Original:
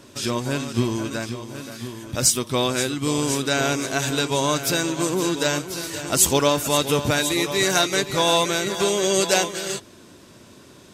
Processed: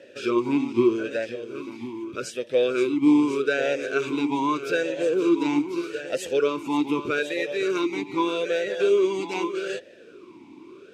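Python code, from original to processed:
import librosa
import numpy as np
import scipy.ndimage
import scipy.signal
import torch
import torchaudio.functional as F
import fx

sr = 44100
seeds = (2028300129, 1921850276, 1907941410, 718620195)

y = fx.rider(x, sr, range_db=3, speed_s=0.5)
y = fx.vowel_sweep(y, sr, vowels='e-u', hz=0.81)
y = y * librosa.db_to_amplitude(8.5)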